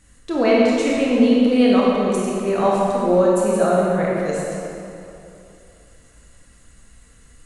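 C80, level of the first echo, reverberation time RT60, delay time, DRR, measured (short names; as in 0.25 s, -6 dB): -1.0 dB, none, 2.9 s, none, -5.5 dB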